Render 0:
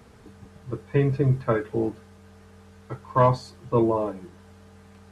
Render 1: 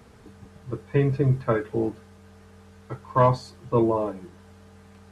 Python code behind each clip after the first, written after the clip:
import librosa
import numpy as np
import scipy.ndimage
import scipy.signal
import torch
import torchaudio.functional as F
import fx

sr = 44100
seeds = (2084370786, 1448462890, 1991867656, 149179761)

y = x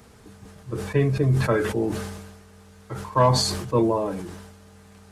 y = fx.high_shelf(x, sr, hz=4900.0, db=8.5)
y = fx.sustainer(y, sr, db_per_s=45.0)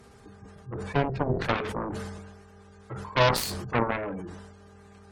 y = fx.spec_gate(x, sr, threshold_db=-30, keep='strong')
y = fx.dmg_buzz(y, sr, base_hz=400.0, harmonics=4, level_db=-57.0, tilt_db=-5, odd_only=False)
y = fx.cheby_harmonics(y, sr, harmonics=(7,), levels_db=(-10,), full_scale_db=-7.0)
y = y * librosa.db_to_amplitude(-4.5)